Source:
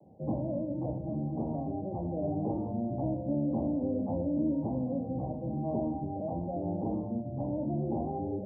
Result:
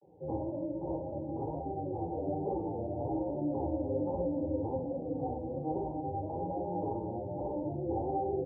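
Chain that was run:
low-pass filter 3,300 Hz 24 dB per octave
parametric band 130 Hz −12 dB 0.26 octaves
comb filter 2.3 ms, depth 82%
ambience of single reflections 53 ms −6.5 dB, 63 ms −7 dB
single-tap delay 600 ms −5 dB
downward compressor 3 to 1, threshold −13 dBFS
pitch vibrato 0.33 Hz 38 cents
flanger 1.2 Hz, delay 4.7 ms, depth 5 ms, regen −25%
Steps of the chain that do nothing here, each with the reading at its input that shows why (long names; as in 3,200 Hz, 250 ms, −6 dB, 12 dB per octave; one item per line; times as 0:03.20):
low-pass filter 3,300 Hz: nothing at its input above 910 Hz
downward compressor, threshold −13 dBFS: peak of its input −18.5 dBFS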